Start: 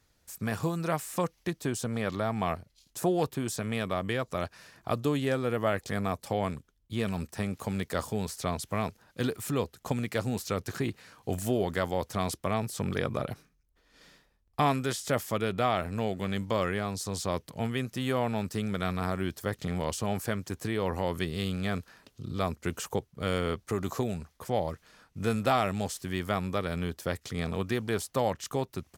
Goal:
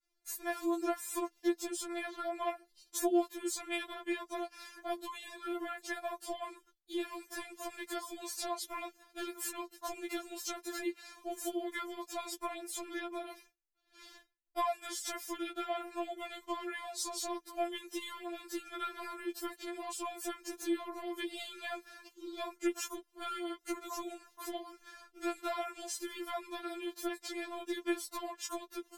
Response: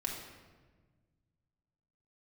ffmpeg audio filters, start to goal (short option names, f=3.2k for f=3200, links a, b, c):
-af "acompressor=threshold=-36dB:ratio=6,agate=range=-33dB:threshold=-57dB:ratio=3:detection=peak,afftfilt=real='re*4*eq(mod(b,16),0)':imag='im*4*eq(mod(b,16),0)':win_size=2048:overlap=0.75,volume=5.5dB"